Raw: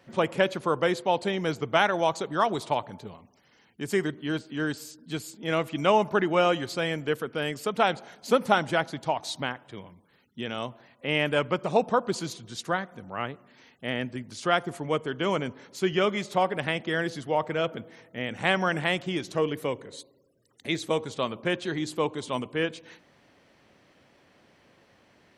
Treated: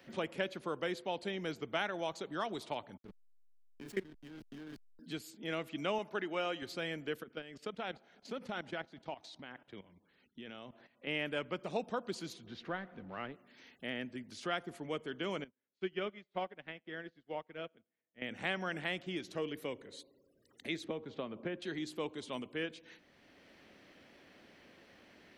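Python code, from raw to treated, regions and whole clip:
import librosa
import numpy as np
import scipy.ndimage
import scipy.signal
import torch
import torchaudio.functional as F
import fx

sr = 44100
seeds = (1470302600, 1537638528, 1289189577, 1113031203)

y = fx.chain(x, sr, fx.doubler(ms=26.0, db=-3),
    fx.level_steps(step_db=20),
    fx.backlash(play_db=-36.5), at=(2.97, 4.99))
y = fx.chain(y, sr, fx.highpass(hz=320.0, slope=6),
    fx.high_shelf(hz=8100.0, db=-4.0), at=(5.98, 6.62))
y = fx.chain(y, sr, fx.level_steps(step_db=14),
    fx.air_absorb(metres=76.0), at=(7.23, 11.07))
y = fx.chain(y, sr, fx.law_mismatch(coded='mu'),
    fx.air_absorb(metres=290.0), at=(12.46, 13.32))
y = fx.chain(y, sr, fx.lowpass(hz=3300.0, slope=12),
    fx.echo_feedback(ms=90, feedback_pct=34, wet_db=-19.0),
    fx.upward_expand(threshold_db=-45.0, expansion=2.5), at=(15.44, 18.22))
y = fx.chain(y, sr, fx.spacing_loss(db_at_10k=38),
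    fx.band_squash(depth_pct=100), at=(20.84, 21.62))
y = fx.graphic_eq(y, sr, hz=(125, 500, 1000, 8000), db=(-9, -3, -7, -6))
y = fx.band_squash(y, sr, depth_pct=40)
y = F.gain(torch.from_numpy(y), -7.5).numpy()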